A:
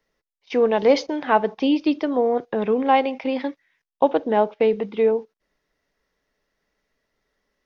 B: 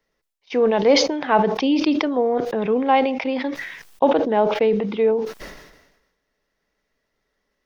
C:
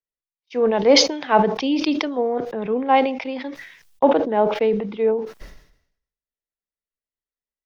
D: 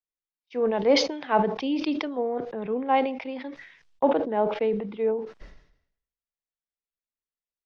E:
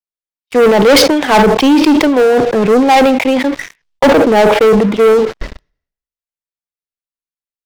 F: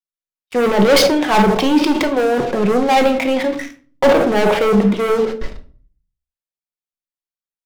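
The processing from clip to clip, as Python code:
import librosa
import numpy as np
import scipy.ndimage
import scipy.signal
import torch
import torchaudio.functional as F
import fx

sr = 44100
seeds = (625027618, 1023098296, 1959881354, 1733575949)

y1 = fx.sustainer(x, sr, db_per_s=54.0)
y2 = fx.band_widen(y1, sr, depth_pct=70)
y2 = F.gain(torch.from_numpy(y2), -1.0).numpy()
y3 = fx.air_absorb(y2, sr, metres=120.0)
y3 = F.gain(torch.from_numpy(y3), -5.5).numpy()
y4 = fx.leveller(y3, sr, passes=5)
y4 = F.gain(torch.from_numpy(y4), 5.0).numpy()
y5 = fx.room_shoebox(y4, sr, seeds[0], volume_m3=330.0, walls='furnished', distance_m=1.0)
y5 = F.gain(torch.from_numpy(y5), -6.0).numpy()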